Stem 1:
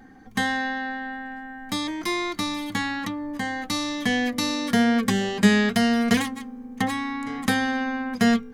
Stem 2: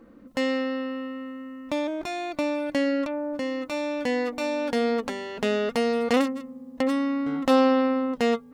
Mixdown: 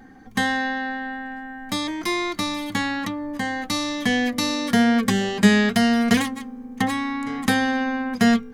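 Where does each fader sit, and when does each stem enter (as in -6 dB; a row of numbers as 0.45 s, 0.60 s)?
+2.0 dB, -18.0 dB; 0.00 s, 0.00 s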